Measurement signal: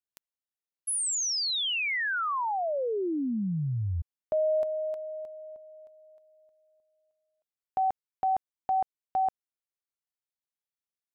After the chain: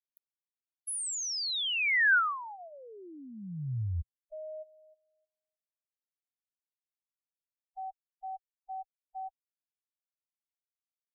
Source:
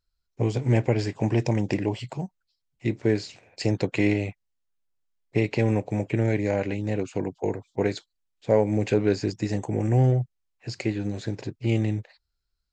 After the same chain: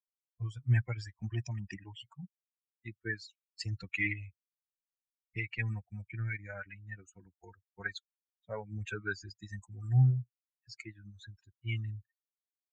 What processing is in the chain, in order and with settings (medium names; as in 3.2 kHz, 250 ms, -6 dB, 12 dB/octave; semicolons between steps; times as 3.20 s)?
expander on every frequency bin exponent 3; FFT filter 120 Hz 0 dB, 240 Hz -14 dB, 550 Hz -17 dB, 990 Hz -9 dB, 1.5 kHz +10 dB, 2.8 kHz 0 dB, 6.3 kHz -4 dB